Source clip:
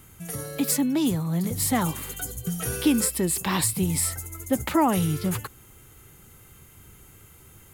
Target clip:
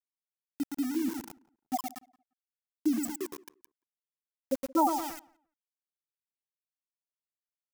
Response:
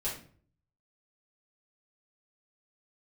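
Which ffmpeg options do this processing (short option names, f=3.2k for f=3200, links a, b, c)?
-filter_complex "[0:a]highpass=f=520:p=1,afftfilt=real='re*gte(hypot(re,im),0.355)':imag='im*gte(hypot(re,im),0.355)':win_size=1024:overlap=0.75,asplit=2[a][b];[b]aecho=0:1:114|228|342|456|570|684:0.447|0.214|0.103|0.0494|0.0237|0.0114[c];[a][c]amix=inputs=2:normalize=0,aeval=exprs='val(0)*gte(abs(val(0)),0.0126)':c=same,aexciter=amount=3:drive=4.7:freq=5.1k,asplit=2[d][e];[e]adelay=174,lowpass=f=1.6k:p=1,volume=-22dB,asplit=2[f][g];[g]adelay=174,lowpass=f=1.6k:p=1,volume=0.19[h];[f][h]amix=inputs=2:normalize=0[i];[d][i]amix=inputs=2:normalize=0"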